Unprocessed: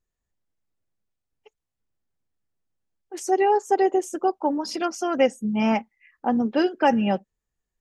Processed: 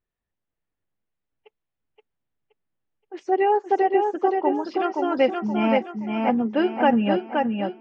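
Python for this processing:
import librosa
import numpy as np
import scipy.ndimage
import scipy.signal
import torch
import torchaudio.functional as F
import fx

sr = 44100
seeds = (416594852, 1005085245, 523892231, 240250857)

p1 = scipy.signal.sosfilt(scipy.signal.butter(4, 3400.0, 'lowpass', fs=sr, output='sos'), x)
p2 = fx.low_shelf(p1, sr, hz=82.0, db=-6.5)
y = p2 + fx.echo_feedback(p2, sr, ms=523, feedback_pct=37, wet_db=-4.0, dry=0)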